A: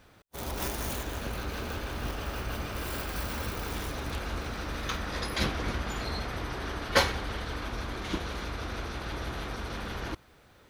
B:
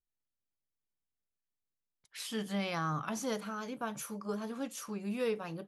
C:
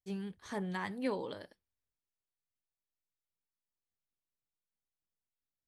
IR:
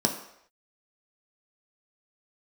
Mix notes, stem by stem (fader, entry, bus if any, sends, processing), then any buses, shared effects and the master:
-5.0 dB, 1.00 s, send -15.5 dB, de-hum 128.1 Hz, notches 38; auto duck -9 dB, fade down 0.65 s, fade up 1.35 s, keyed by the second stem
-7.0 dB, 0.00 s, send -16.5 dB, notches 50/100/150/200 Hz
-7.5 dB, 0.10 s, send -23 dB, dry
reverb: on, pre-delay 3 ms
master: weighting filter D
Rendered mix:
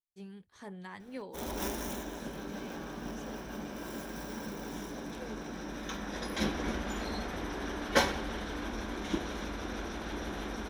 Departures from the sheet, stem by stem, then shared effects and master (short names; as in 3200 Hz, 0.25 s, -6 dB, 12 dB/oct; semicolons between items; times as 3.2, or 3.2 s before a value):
stem B -7.0 dB -> -18.0 dB; stem C: send off; master: missing weighting filter D